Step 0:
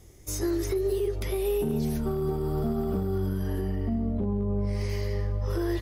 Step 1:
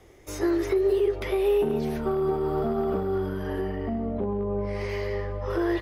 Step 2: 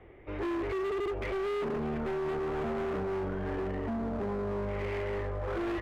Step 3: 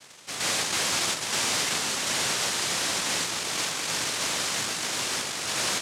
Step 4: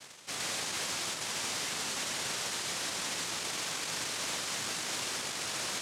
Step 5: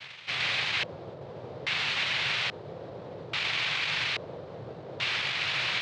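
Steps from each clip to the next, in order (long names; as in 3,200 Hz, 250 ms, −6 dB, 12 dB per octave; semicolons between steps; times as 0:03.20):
three-way crossover with the lows and the highs turned down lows −13 dB, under 330 Hz, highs −16 dB, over 3,300 Hz; level +7.5 dB
soft clipping −26 dBFS, distortion −11 dB; Butterworth low-pass 2,800 Hz 36 dB per octave; gain into a clipping stage and back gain 31 dB
cochlear-implant simulation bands 1; level +5 dB
reversed playback; upward compression, threshold −38 dBFS; reversed playback; brickwall limiter −22.5 dBFS, peak gain reduction 8.5 dB; level −3.5 dB
octave-band graphic EQ 125/250/4,000 Hz +10/−9/+11 dB; auto-filter low-pass square 0.6 Hz 500–2,400 Hz; level +2 dB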